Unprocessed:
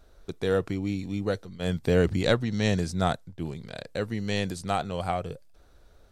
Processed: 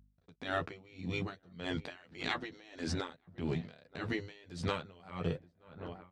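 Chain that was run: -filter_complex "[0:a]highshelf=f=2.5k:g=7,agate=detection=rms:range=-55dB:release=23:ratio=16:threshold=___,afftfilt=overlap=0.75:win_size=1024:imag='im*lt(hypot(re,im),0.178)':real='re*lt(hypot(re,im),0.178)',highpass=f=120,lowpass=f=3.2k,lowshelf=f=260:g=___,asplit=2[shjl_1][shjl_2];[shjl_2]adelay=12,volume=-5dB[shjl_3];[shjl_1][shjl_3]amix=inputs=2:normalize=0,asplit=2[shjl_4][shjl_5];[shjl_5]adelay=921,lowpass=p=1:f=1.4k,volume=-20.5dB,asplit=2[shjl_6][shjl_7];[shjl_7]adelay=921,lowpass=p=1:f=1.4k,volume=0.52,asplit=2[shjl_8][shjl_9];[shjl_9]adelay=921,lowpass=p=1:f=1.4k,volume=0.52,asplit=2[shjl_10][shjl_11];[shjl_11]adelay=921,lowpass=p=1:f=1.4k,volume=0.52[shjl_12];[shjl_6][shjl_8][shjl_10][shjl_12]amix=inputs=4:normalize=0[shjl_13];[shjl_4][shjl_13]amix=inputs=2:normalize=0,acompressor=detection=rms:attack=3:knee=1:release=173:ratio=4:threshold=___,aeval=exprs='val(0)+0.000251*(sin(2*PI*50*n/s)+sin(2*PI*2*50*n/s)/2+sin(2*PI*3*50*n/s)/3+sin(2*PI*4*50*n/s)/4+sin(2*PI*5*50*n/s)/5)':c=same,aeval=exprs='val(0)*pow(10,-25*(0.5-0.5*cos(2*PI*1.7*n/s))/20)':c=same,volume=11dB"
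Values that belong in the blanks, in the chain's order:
-49dB, 4, -40dB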